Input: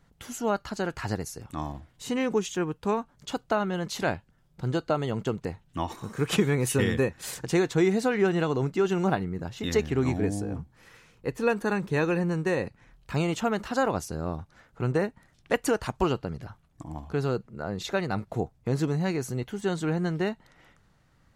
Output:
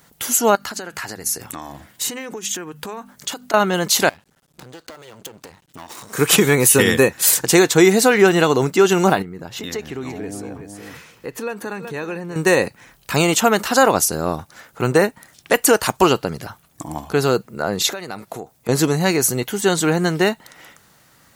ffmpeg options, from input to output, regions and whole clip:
-filter_complex "[0:a]asettb=1/sr,asplit=3[s0][s1][s2];[s0]atrim=end=0.554[s3];[s1]atrim=start=0.55:end=3.54,asetpts=PTS-STARTPTS,afade=t=in:d=0.004:c=qsin,afade=t=out:st=2.986:d=0.004:c=qsin,equalizer=f=1800:t=o:w=0.6:g=4.5,bandreject=f=50:t=h:w=6,bandreject=f=100:t=h:w=6,bandreject=f=150:t=h:w=6,bandreject=f=200:t=h:w=6,bandreject=f=250:t=h:w=6,acompressor=threshold=0.0126:ratio=12:attack=3.2:release=140:knee=1:detection=peak[s4];[s2]atrim=start=3.536[s5];[s3][s4]acrossfade=d=0.004:c1=hsin:c2=qsin[s6];[s6][s5]acrossfade=d=0.004:c1=qsin:c2=hsin,asettb=1/sr,asplit=3[s7][s8][s9];[s7]atrim=end=4.094[s10];[s8]atrim=start=4.09:end=6.13,asetpts=PTS-STARTPTS,afade=t=in:d=0.004:c=qsin,afade=t=out:st=2.036:d=0.004:c=qsin,lowpass=9800,acompressor=threshold=0.01:ratio=12:attack=3.2:release=140:knee=1:detection=peak,aeval=exprs='max(val(0),0)':c=same[s11];[s9]atrim=start=6.126[s12];[s10][s11]acrossfade=d=0.004:c1=hsin:c2=qsin[s13];[s13][s12]acrossfade=d=0.004:c1=qsin:c2=hsin,asettb=1/sr,asplit=3[s14][s15][s16];[s14]atrim=end=9.224[s17];[s15]atrim=start=9.22:end=12.36,asetpts=PTS-STARTPTS,afade=t=in:d=0.004:c=qsin,afade=t=out:st=3.136:d=0.004:c=qsin,equalizer=f=11000:t=o:w=2:g=-8.5,aecho=1:1:373:0.178,atrim=end_sample=138474,acompressor=threshold=0.00891:ratio=2.5:attack=3.2:release=140:knee=1:detection=peak[s18];[s16]atrim=start=12.356[s19];[s17][s18]acrossfade=d=0.004:c1=hsin:c2=qsin[s20];[s20][s19]acrossfade=d=0.004:c1=qsin:c2=hsin,asettb=1/sr,asplit=3[s21][s22][s23];[s21]atrim=end=17.904[s24];[s22]atrim=start=17.9:end=18.69,asetpts=PTS-STARTPTS,afade=t=in:d=0.004:c=qsin,afade=t=out:st=0.786:d=0.004:c=qsin,lowshelf=f=120:g=-9,acompressor=threshold=0.0141:ratio=8:attack=3.2:release=140:knee=1:detection=peak[s25];[s23]atrim=start=18.686[s26];[s24][s25]acrossfade=d=0.004:c1=hsin:c2=qsin[s27];[s27][s26]acrossfade=d=0.004:c1=qsin:c2=hsin,highpass=f=310:p=1,aemphasis=mode=production:type=50fm,alimiter=level_in=5.31:limit=0.891:release=50:level=0:latency=1,volume=0.891"

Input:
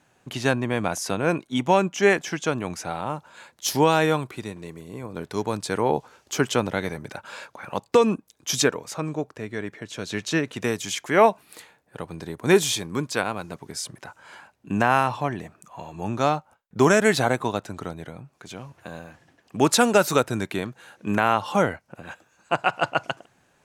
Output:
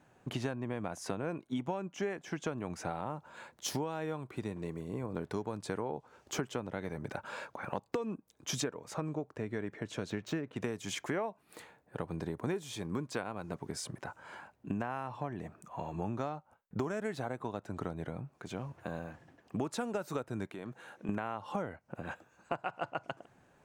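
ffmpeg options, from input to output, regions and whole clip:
-filter_complex "[0:a]asettb=1/sr,asplit=3[s0][s1][s2];[s0]atrim=end=10.104[s3];[s1]atrim=start=10.1:end=10.56,asetpts=PTS-STARTPTS,afade=t=in:d=0.004:c=qsin,afade=t=out:st=0.456:d=0.004:c=qsin,equalizer=f=4900:w=0.49:g=-3.5,adynamicsmooth=sensitivity=7:basefreq=4600[s4];[s2]atrim=start=10.556[s5];[s3][s4]acrossfade=d=0.004:c1=hsin:c2=qsin[s6];[s6][s5]acrossfade=d=0.004:c1=qsin:c2=hsin,asettb=1/sr,asplit=3[s7][s8][s9];[s7]atrim=end=20.474[s10];[s8]atrim=start=20.47:end=21.09,asetpts=PTS-STARTPTS,afade=t=in:d=0.004:c=qsin,afade=t=out:st=0.616:d=0.004:c=qsin,highpass=f=190:p=1,bandreject=f=4700:w=19,acompressor=threshold=0.0178:ratio=10:attack=3.2:release=140:knee=1:detection=peak[s11];[s9]atrim=start=21.086[s12];[s10][s11]acrossfade=d=0.004:c1=hsin:c2=qsin[s13];[s13][s12]acrossfade=d=0.004:c1=qsin:c2=hsin,equalizer=f=5200:t=o:w=2.9:g=-9.5,acompressor=threshold=0.0251:ratio=16,equalizer=f=12000:t=o:w=0.3:g=-10.5"

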